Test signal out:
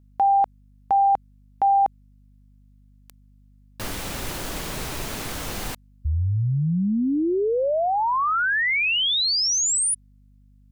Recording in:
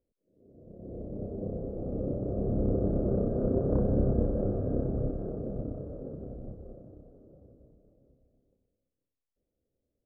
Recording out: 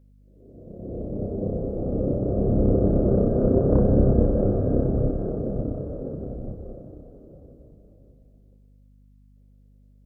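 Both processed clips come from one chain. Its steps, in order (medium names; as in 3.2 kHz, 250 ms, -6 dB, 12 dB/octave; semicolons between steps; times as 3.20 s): hum 50 Hz, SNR 30 dB; trim +8 dB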